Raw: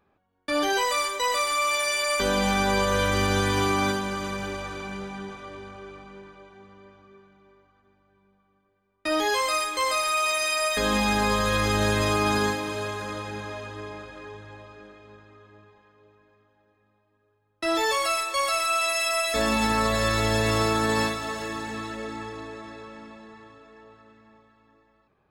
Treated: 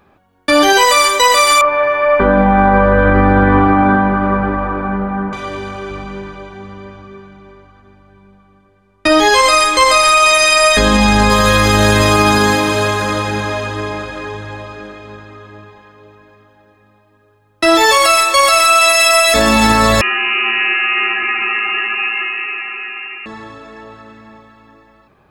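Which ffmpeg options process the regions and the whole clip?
ffmpeg -i in.wav -filter_complex "[0:a]asettb=1/sr,asplit=3[link_01][link_02][link_03];[link_01]atrim=end=1.614[link_04];[link_02]atrim=start=1.61:end=5.33,asetpts=PTS-STARTPTS,afade=type=in:duration=0.004:curve=qsin,afade=type=out:start_time=3.716:duration=0.004:curve=qsin,lowpass=frequency=1500:width=0.5412,lowpass=frequency=1500:width=1.3066,aemphasis=mode=production:type=50kf,asplit=2[link_05][link_06];[link_06]adelay=37,volume=-5dB[link_07];[link_05][link_07]amix=inputs=2:normalize=0,atrim=end_sample=164052[link_08];[link_03]atrim=start=5.326[link_09];[link_04][link_08]acrossfade=duration=0.004:curve1=hsin:curve2=qsin[link_10];[link_10][link_09]acrossfade=duration=0.004:curve1=qsin:curve2=hsin,asettb=1/sr,asplit=3[link_11][link_12][link_13];[link_11]atrim=end=5.904[link_14];[link_12]atrim=start=5.9:end=11.3,asetpts=PTS-STARTPTS,afade=type=in:duration=0.004:curve=qsin,afade=type=out:start_time=5.396:duration=0.004:curve=qsin,lowpass=9900,lowshelf=frequency=150:gain=8[link_15];[link_13]atrim=start=11.296[link_16];[link_14][link_15]acrossfade=duration=0.004:curve1=hsin:curve2=qsin[link_17];[link_17][link_16]acrossfade=duration=0.004:curve1=qsin:curve2=hsin,asettb=1/sr,asplit=3[link_18][link_19][link_20];[link_18]atrim=end=20.014[link_21];[link_19]atrim=start=20.01:end=23.26,asetpts=PTS-STARTPTS,afade=type=in:duration=0.004:curve=qsin,afade=type=out:start_time=3.246:duration=0.004:curve=qsin,acompressor=threshold=-28dB:ratio=4:attack=3.2:release=140:knee=1:detection=peak,highpass=140,lowpass=frequency=2600:width_type=q:width=0.5098,lowpass=frequency=2600:width_type=q:width=0.6013,lowpass=frequency=2600:width_type=q:width=0.9,lowpass=frequency=2600:width_type=q:width=2.563,afreqshift=-3000[link_22];[link_20]atrim=start=23.256[link_23];[link_21][link_22]acrossfade=duration=0.004:curve1=hsin:curve2=qsin[link_24];[link_24][link_23]acrossfade=duration=0.004:curve1=qsin:curve2=hsin,equalizer=frequency=440:width=5.7:gain=-3,alimiter=level_in=17.5dB:limit=-1dB:release=50:level=0:latency=1,volume=-1dB" out.wav

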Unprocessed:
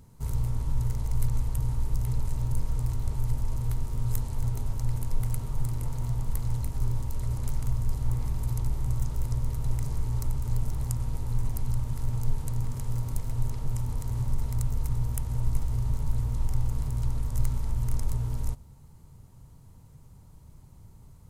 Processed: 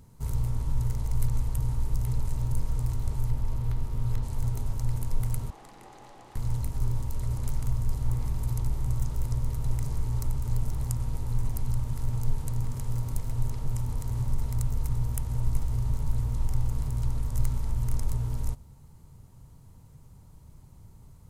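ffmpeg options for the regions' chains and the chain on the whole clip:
ffmpeg -i in.wav -filter_complex "[0:a]asettb=1/sr,asplit=3[link_01][link_02][link_03];[link_01]atrim=end=3.284[link_04];[link_02]atrim=start=3.28:end=4.23,asetpts=PTS-STARTPTS,afade=type=in:duration=0.004:curve=qsin,afade=type=out:start_time=0.946:duration=0.004:curve=qsin,acrossover=split=4900[link_05][link_06];[link_06]acompressor=threshold=-59dB:ratio=4:attack=1:release=60[link_07];[link_05][link_07]amix=inputs=2:normalize=0,equalizer=frequency=12000:width_type=o:width=0.46:gain=5.5[link_08];[link_03]atrim=start=4.226[link_09];[link_04][link_08]acrossfade=duration=0.004:curve1=hsin:curve2=qsin[link_10];[link_10][link_09]acrossfade=duration=0.004:curve1=qsin:curve2=hsin,asettb=1/sr,asplit=3[link_11][link_12][link_13];[link_11]atrim=end=5.504[link_14];[link_12]atrim=start=5.5:end=6.36,asetpts=PTS-STARTPTS,afade=type=in:duration=0.004:curve=qsin,afade=type=out:start_time=0.856:duration=0.004:curve=qsin,highpass=170,lowpass=2700,afreqshift=-110,aemphasis=mode=production:type=bsi[link_15];[link_13]atrim=start=6.356[link_16];[link_14][link_15]acrossfade=duration=0.004:curve1=hsin:curve2=qsin[link_17];[link_17][link_16]acrossfade=duration=0.004:curve1=qsin:curve2=hsin" out.wav

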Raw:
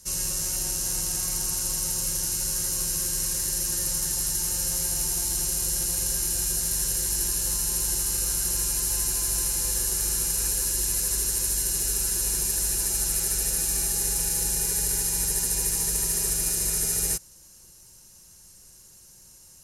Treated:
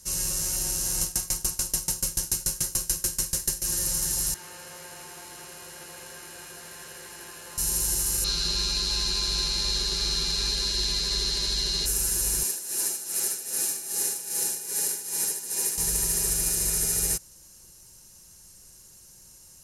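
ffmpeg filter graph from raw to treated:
ffmpeg -i in.wav -filter_complex "[0:a]asettb=1/sr,asplit=3[link_01][link_02][link_03];[link_01]atrim=end=1.014[link_04];[link_02]atrim=start=1.01:end=3.62,asetpts=PTS-STARTPTS,afade=type=in:duration=0.004:curve=qsin,afade=type=out:start_time=2.606:duration=0.004:curve=qsin,acontrast=63,aeval=exprs='val(0)*pow(10,-25*if(lt(mod(6.9*n/s,1),2*abs(6.9)/1000),1-mod(6.9*n/s,1)/(2*abs(6.9)/1000),(mod(6.9*n/s,1)-2*abs(6.9)/1000)/(1-2*abs(6.9)/1000))/20)':channel_layout=same[link_05];[link_03]atrim=start=3.616[link_06];[link_04][link_05]acrossfade=duration=0.004:curve1=hsin:curve2=qsin[link_07];[link_07][link_06]acrossfade=duration=0.004:curve1=qsin:curve2=hsin,asettb=1/sr,asplit=3[link_08][link_09][link_10];[link_08]atrim=end=4.344[link_11];[link_09]atrim=start=4.34:end=7.58,asetpts=PTS-STARTPTS,afade=type=in:duration=0.004:curve=qsin,afade=type=out:start_time=3.236:duration=0.004:curve=qsin,highpass=140,acrossover=split=470 3000:gain=0.251 1 0.1[link_12][link_13][link_14];[link_12][link_13][link_14]amix=inputs=3:normalize=0,bandreject=frequency=5700:width=20[link_15];[link_10]atrim=start=7.576[link_16];[link_11][link_15]acrossfade=duration=0.004:curve1=hsin:curve2=qsin[link_17];[link_17][link_16]acrossfade=duration=0.004:curve1=qsin:curve2=hsin,asettb=1/sr,asplit=3[link_18][link_19][link_20];[link_18]atrim=end=8.244[link_21];[link_19]atrim=start=8.24:end=11.86,asetpts=PTS-STARTPTS,afade=type=in:duration=0.004:curve=qsin,afade=type=out:start_time=3.616:duration=0.004:curve=qsin,lowpass=frequency=4100:width_type=q:width=6.7,aecho=1:1:5:0.49,atrim=end_sample=159642,asoftclip=type=hard:threshold=-17dB[link_22];[link_20]atrim=start=11.856[link_23];[link_21][link_22]acrossfade=duration=0.004:curve1=hsin:curve2=qsin[link_24];[link_24][link_23]acrossfade=duration=0.004:curve1=qsin:curve2=hsin,asettb=1/sr,asplit=3[link_25][link_26][link_27];[link_25]atrim=end=12.434[link_28];[link_26]atrim=start=12.43:end=15.78,asetpts=PTS-STARTPTS,afade=type=in:duration=0.004:curve=qsin,afade=type=out:start_time=3.346:duration=0.004:curve=qsin,highpass=frequency=220:width=0.5412,highpass=frequency=220:width=1.3066,tremolo=f=2.5:d=0.73[link_29];[link_27]atrim=start=15.776[link_30];[link_28][link_29]acrossfade=duration=0.004:curve1=hsin:curve2=qsin[link_31];[link_31][link_30]acrossfade=duration=0.004:curve1=qsin:curve2=hsin" out.wav

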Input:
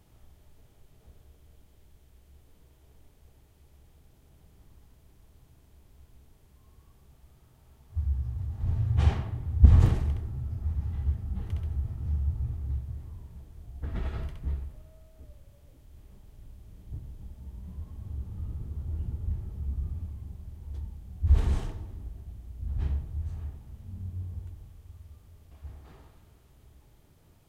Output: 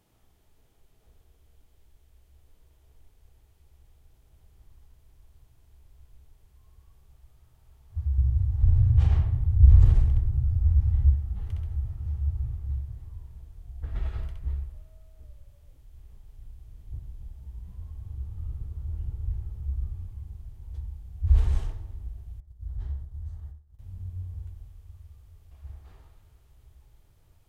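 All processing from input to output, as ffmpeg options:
ffmpeg -i in.wav -filter_complex "[0:a]asettb=1/sr,asplit=3[link_01][link_02][link_03];[link_01]atrim=end=8.184[link_04];[link_02]atrim=start=8.18:end=11.15,asetpts=PTS-STARTPTS,afade=type=in:duration=0.004:curve=qsin,afade=type=out:start_time=2.966:duration=0.004:curve=qsin,lowshelf=frequency=210:gain=10.5,acompressor=threshold=-15dB:ratio=2.5:attack=3.2:release=140:knee=1:detection=peak[link_05];[link_03]atrim=start=11.146[link_06];[link_04][link_05]acrossfade=duration=0.004:curve1=hsin:curve2=qsin[link_07];[link_07][link_06]acrossfade=duration=0.004:curve1=qsin:curve2=hsin,asettb=1/sr,asplit=3[link_08][link_09][link_10];[link_08]atrim=end=22.404[link_11];[link_09]atrim=start=22.4:end=23.79,asetpts=PTS-STARTPTS,afade=type=in:duration=0.004:curve=qsin,afade=type=out:start_time=1.386:duration=0.004:curve=qsin,agate=range=-33dB:threshold=-34dB:ratio=3:release=100:detection=peak,equalizer=frequency=2500:width_type=o:width=0.3:gain=-10.5,acompressor=threshold=-39dB:ratio=1.5:attack=3.2:release=140:knee=1:detection=peak[link_12];[link_10]atrim=start=23.786[link_13];[link_11][link_12]acrossfade=duration=0.004:curve1=hsin:curve2=qsin[link_14];[link_14][link_13]acrossfade=duration=0.004:curve1=qsin:curve2=hsin,lowshelf=frequency=110:gain=-10.5,bandreject=frequency=74.45:width_type=h:width=4,bandreject=frequency=148.9:width_type=h:width=4,bandreject=frequency=223.35:width_type=h:width=4,bandreject=frequency=297.8:width_type=h:width=4,bandreject=frequency=372.25:width_type=h:width=4,bandreject=frequency=446.7:width_type=h:width=4,bandreject=frequency=521.15:width_type=h:width=4,bandreject=frequency=595.6:width_type=h:width=4,bandreject=frequency=670.05:width_type=h:width=4,bandreject=frequency=744.5:width_type=h:width=4,bandreject=frequency=818.95:width_type=h:width=4,bandreject=frequency=893.4:width_type=h:width=4,bandreject=frequency=967.85:width_type=h:width=4,bandreject=frequency=1042.3:width_type=h:width=4,bandreject=frequency=1116.75:width_type=h:width=4,bandreject=frequency=1191.2:width_type=h:width=4,bandreject=frequency=1265.65:width_type=h:width=4,bandreject=frequency=1340.1:width_type=h:width=4,bandreject=frequency=1414.55:width_type=h:width=4,bandreject=frequency=1489:width_type=h:width=4,bandreject=frequency=1563.45:width_type=h:width=4,bandreject=frequency=1637.9:width_type=h:width=4,bandreject=frequency=1712.35:width_type=h:width=4,bandreject=frequency=1786.8:width_type=h:width=4,bandreject=frequency=1861.25:width_type=h:width=4,bandreject=frequency=1935.7:width_type=h:width=4,bandreject=frequency=2010.15:width_type=h:width=4,bandreject=frequency=2084.6:width_type=h:width=4,bandreject=frequency=2159.05:width_type=h:width=4,bandreject=frequency=2233.5:width_type=h:width=4,bandreject=frequency=2307.95:width_type=h:width=4,asubboost=boost=9:cutoff=71,volume=-3dB" out.wav

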